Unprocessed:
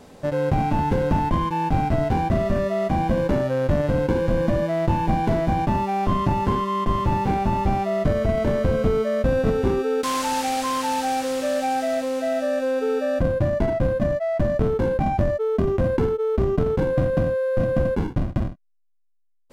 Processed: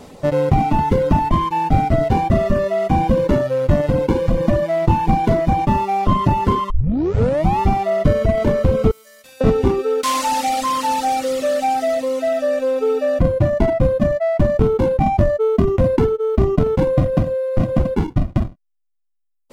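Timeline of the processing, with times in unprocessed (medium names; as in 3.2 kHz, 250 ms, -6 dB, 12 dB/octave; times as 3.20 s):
6.70 s: tape start 0.89 s
8.91–9.41 s: differentiator
whole clip: band-stop 1.6 kHz, Q 9.6; reverb removal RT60 1.7 s; trim +7 dB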